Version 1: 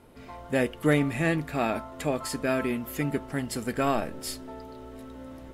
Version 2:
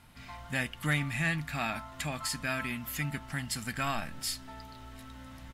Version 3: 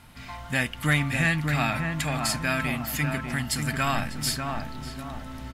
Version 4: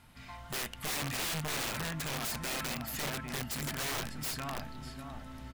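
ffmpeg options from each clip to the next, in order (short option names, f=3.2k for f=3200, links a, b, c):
-filter_complex "[0:a]firequalizer=gain_entry='entry(160,0);entry(420,-20);entry(740,-4);entry(1700,3);entry(4300,5);entry(10000,2)':delay=0.05:min_phase=1,asplit=2[a][b];[b]acompressor=threshold=-36dB:ratio=6,volume=-2dB[c];[a][c]amix=inputs=2:normalize=0,volume=-5dB"
-filter_complex "[0:a]asplit=2[a][b];[b]adelay=596,lowpass=f=1.2k:p=1,volume=-3.5dB,asplit=2[c][d];[d]adelay=596,lowpass=f=1.2k:p=1,volume=0.47,asplit=2[e][f];[f]adelay=596,lowpass=f=1.2k:p=1,volume=0.47,asplit=2[g][h];[h]adelay=596,lowpass=f=1.2k:p=1,volume=0.47,asplit=2[i][j];[j]adelay=596,lowpass=f=1.2k:p=1,volume=0.47,asplit=2[k][l];[l]adelay=596,lowpass=f=1.2k:p=1,volume=0.47[m];[a][c][e][g][i][k][m]amix=inputs=7:normalize=0,volume=6.5dB"
-af "aeval=exprs='(mod(12.6*val(0)+1,2)-1)/12.6':c=same,volume=-8dB"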